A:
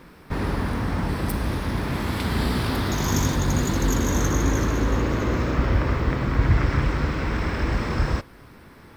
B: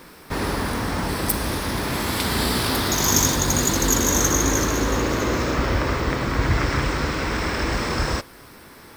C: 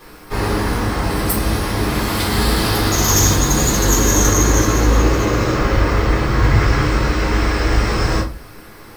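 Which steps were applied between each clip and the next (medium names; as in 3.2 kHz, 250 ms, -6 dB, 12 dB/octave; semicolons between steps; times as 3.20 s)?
tone controls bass -7 dB, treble +9 dB; trim +4 dB
simulated room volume 150 m³, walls furnished, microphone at 3.8 m; trim -4 dB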